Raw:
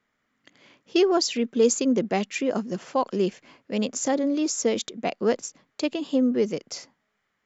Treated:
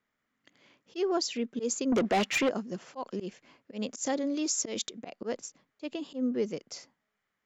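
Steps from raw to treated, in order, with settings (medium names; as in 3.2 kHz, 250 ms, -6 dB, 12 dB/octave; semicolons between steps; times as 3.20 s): 1.92–2.49 s: overdrive pedal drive 25 dB, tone 3.5 kHz, clips at -10.5 dBFS; 3.88–4.99 s: treble shelf 2.3 kHz +6.5 dB; slow attack 112 ms; trim -7 dB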